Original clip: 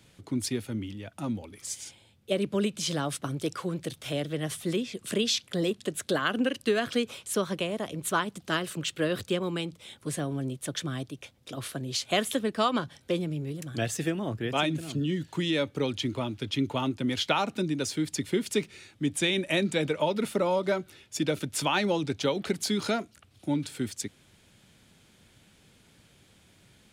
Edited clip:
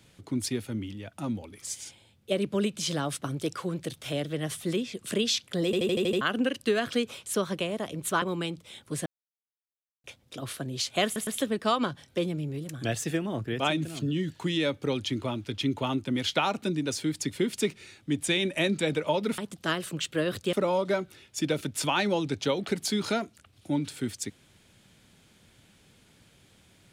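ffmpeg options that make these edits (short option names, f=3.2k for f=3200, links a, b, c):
-filter_complex "[0:a]asplit=15[a][b][c][d][e][f][g][h][i][j][k][l][m][n][o];[a]atrim=end=5.732[p];[b]atrim=start=5.648:end=5.732[q];[c]atrim=start=5.648:end=5.732[r];[d]atrim=start=5.648:end=5.732[s];[e]atrim=start=5.648:end=5.732[t];[f]atrim=start=5.648:end=5.732[u];[g]atrim=start=5.648:end=5.732[v];[h]atrim=start=6.208:end=8.222[w];[i]atrim=start=9.368:end=10.21,asetpts=PTS-STARTPTS,afade=t=out:st=0.838:d=0.004:c=hsin[x];[j]atrim=start=10.21:end=11.19,asetpts=PTS-STARTPTS,volume=0[y];[k]atrim=start=11.19:end=12.312,asetpts=PTS-STARTPTS,afade=t=in:d=0.004:c=hsin[z];[l]atrim=start=12.198:end=12.312[aa];[m]atrim=start=12.198:end=20.312[ab];[n]atrim=start=8.218:end=9.372[ac];[o]atrim=start=20.308[ad];[p][q]acrossfade=d=0.004:c1=hsin:c2=hsin[ae];[ae][r]acrossfade=d=0.004:c1=hsin:c2=hsin[af];[af][s]acrossfade=d=0.004:c1=hsin:c2=hsin[ag];[ag][t]acrossfade=d=0.004:c1=hsin:c2=hsin[ah];[ah][u]acrossfade=d=0.004:c1=hsin:c2=hsin[ai];[ai][v]acrossfade=d=0.004:c1=hsin:c2=hsin[aj];[aj][w]acrossfade=d=0.004:c1=hsin:c2=hsin[ak];[x][y][z]concat=n=3:v=0:a=1[al];[ak][al]acrossfade=d=0.004:c1=hsin:c2=hsin[am];[am][aa]acrossfade=d=0.004:c1=hsin:c2=hsin[an];[an][ab]acrossfade=d=0.004:c1=hsin:c2=hsin[ao];[ao][ac]acrossfade=d=0.004:c1=hsin:c2=hsin[ap];[ap][ad]acrossfade=d=0.004:c1=hsin:c2=hsin"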